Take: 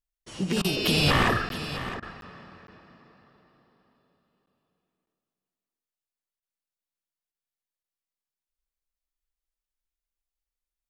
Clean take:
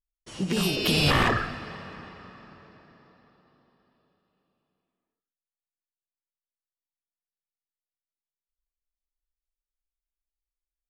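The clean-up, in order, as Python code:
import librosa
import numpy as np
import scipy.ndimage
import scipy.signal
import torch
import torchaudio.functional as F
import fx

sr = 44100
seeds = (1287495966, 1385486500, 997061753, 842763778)

y = fx.fix_interpolate(x, sr, at_s=(1.49, 2.21, 2.67, 4.46, 5.06, 7.83), length_ms=12.0)
y = fx.fix_interpolate(y, sr, at_s=(0.62, 2.0, 6.4, 7.32), length_ms=23.0)
y = fx.fix_echo_inverse(y, sr, delay_ms=661, level_db=-13.0)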